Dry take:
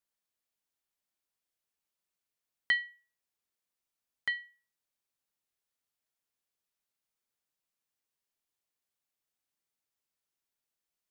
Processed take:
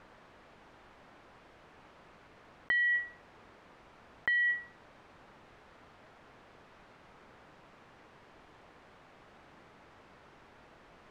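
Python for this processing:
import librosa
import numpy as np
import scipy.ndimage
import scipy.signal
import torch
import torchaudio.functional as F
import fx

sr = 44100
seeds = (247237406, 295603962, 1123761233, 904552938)

y = scipy.signal.sosfilt(scipy.signal.butter(2, 1400.0, 'lowpass', fs=sr, output='sos'), x)
y = fx.env_flatten(y, sr, amount_pct=100)
y = y * librosa.db_to_amplitude(2.5)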